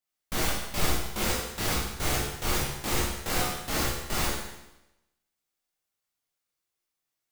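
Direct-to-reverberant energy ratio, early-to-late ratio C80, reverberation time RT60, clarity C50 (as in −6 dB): −6.0 dB, 3.5 dB, 0.95 s, 1.0 dB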